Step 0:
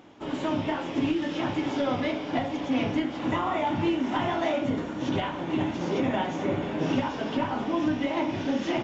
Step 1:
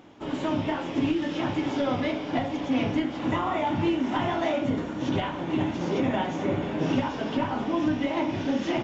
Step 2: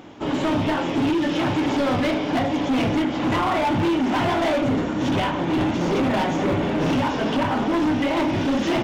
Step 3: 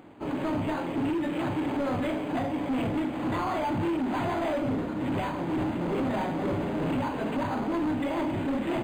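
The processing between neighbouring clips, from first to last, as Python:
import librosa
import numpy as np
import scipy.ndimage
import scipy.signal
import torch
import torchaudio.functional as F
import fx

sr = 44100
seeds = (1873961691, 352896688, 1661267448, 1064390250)

y1 = fx.low_shelf(x, sr, hz=190.0, db=3.0)
y2 = np.clip(y1, -10.0 ** (-26.5 / 20.0), 10.0 ** (-26.5 / 20.0))
y2 = F.gain(torch.from_numpy(y2), 8.5).numpy()
y3 = np.interp(np.arange(len(y2)), np.arange(len(y2))[::8], y2[::8])
y3 = F.gain(torch.from_numpy(y3), -7.0).numpy()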